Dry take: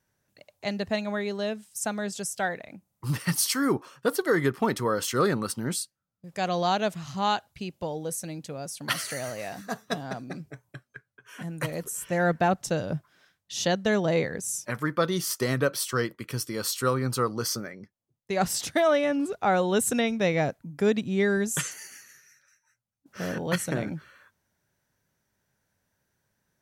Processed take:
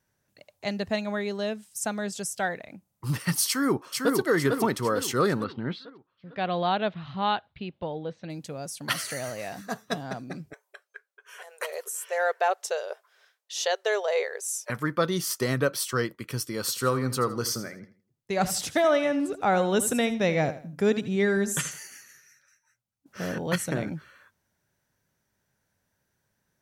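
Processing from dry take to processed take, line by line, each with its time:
3.47–4.17 s: echo throw 450 ms, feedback 50%, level -3.5 dB
5.44–8.30 s: elliptic low-pass 3.8 kHz, stop band 80 dB
10.53–14.70 s: brick-wall FIR high-pass 380 Hz
16.60–21.82 s: feedback delay 81 ms, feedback 29%, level -13.5 dB

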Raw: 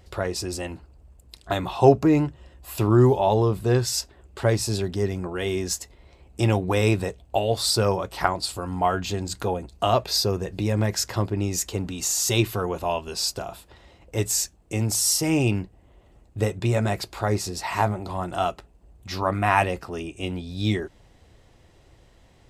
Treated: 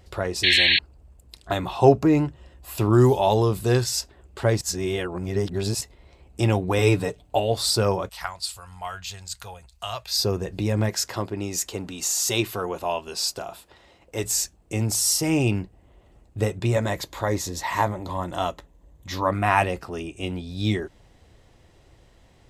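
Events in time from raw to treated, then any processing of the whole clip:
0.43–0.79 s: painted sound noise 1.6–4.4 kHz -18 dBFS
2.93–3.84 s: treble shelf 3.2 kHz +10.5 dB
4.61–5.81 s: reverse
6.78–7.40 s: comb 6.8 ms
8.09–10.19 s: amplifier tone stack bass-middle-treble 10-0-10
10.89–14.24 s: bass shelf 170 Hz -10.5 dB
16.75–19.31 s: rippled EQ curve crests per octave 1.1, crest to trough 7 dB

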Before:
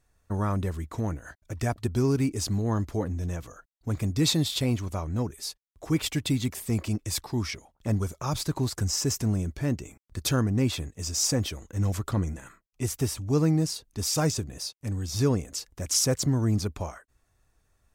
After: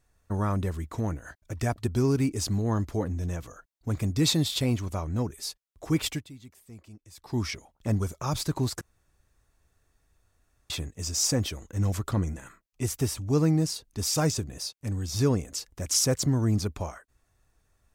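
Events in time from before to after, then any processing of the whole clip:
6.10–7.35 s: dip -20 dB, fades 0.15 s
8.81–10.70 s: room tone

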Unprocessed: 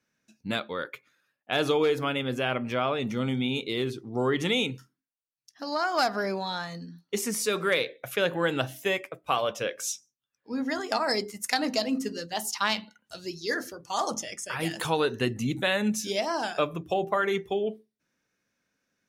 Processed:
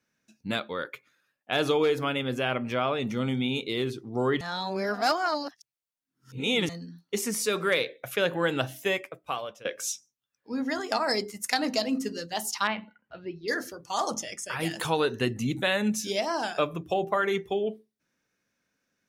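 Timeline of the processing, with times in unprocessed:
4.41–6.69 s: reverse
8.96–9.65 s: fade out, to -19.5 dB
12.67–13.48 s: low-pass 2.4 kHz 24 dB/octave

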